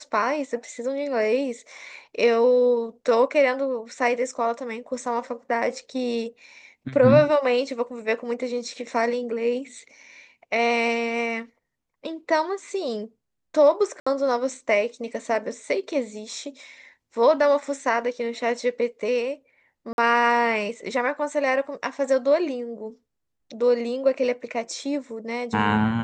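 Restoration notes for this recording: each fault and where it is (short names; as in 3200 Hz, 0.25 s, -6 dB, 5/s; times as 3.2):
14–14.06 gap 65 ms
19.93–19.98 gap 51 ms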